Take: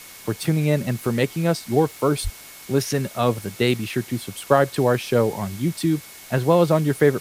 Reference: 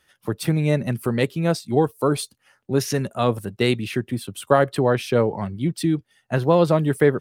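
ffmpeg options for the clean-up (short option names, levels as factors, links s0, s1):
-filter_complex "[0:a]adeclick=t=4,bandreject=f=2200:w=30,asplit=3[s0][s1][s2];[s0]afade=t=out:st=2.23:d=0.02[s3];[s1]highpass=f=140:w=0.5412,highpass=f=140:w=1.3066,afade=t=in:st=2.23:d=0.02,afade=t=out:st=2.35:d=0.02[s4];[s2]afade=t=in:st=2.35:d=0.02[s5];[s3][s4][s5]amix=inputs=3:normalize=0,afwtdn=0.0089"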